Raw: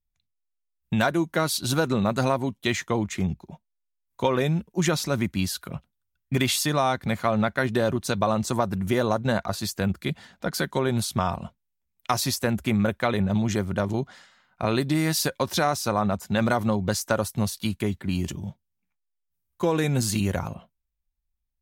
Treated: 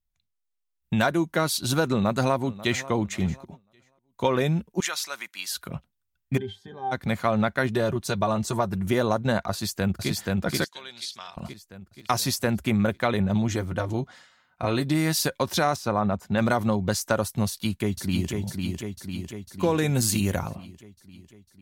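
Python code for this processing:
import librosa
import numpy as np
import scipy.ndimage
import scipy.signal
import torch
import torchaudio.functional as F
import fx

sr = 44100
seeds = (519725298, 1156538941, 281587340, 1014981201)

y = fx.echo_throw(x, sr, start_s=1.9, length_s=1.0, ms=540, feedback_pct=35, wet_db=-17.5)
y = fx.highpass(y, sr, hz=1200.0, slope=12, at=(4.8, 5.51))
y = fx.octave_resonator(y, sr, note='G', decay_s=0.12, at=(6.37, 6.91), fade=0.02)
y = fx.notch_comb(y, sr, f0_hz=260.0, at=(7.75, 8.85))
y = fx.echo_throw(y, sr, start_s=9.51, length_s=0.58, ms=480, feedback_pct=50, wet_db=-1.0)
y = fx.bandpass_q(y, sr, hz=3900.0, q=1.6, at=(10.64, 11.37))
y = fx.notch_comb(y, sr, f0_hz=200.0, at=(13.48, 14.86))
y = fx.high_shelf(y, sr, hz=3900.0, db=-11.5, at=(15.76, 16.38))
y = fx.echo_throw(y, sr, start_s=17.47, length_s=0.84, ms=500, feedback_pct=65, wet_db=-4.0)
y = fx.high_shelf(y, sr, hz=7800.0, db=7.5, at=(19.88, 20.46))
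y = fx.edit(y, sr, fx.fade_down_up(start_s=3.47, length_s=0.79, db=-9.5, fade_s=0.19), tone=tone)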